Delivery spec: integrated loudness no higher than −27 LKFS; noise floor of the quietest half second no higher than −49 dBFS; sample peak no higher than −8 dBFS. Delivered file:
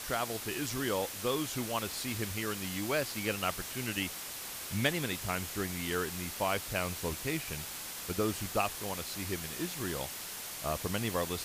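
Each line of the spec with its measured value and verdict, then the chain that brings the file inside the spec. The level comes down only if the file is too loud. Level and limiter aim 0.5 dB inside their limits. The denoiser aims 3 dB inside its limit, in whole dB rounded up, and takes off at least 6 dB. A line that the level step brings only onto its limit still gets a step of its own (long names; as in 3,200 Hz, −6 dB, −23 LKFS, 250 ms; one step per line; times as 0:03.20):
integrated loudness −34.5 LKFS: in spec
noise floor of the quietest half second −42 dBFS: out of spec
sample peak −16.0 dBFS: in spec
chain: broadband denoise 10 dB, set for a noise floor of −42 dBFS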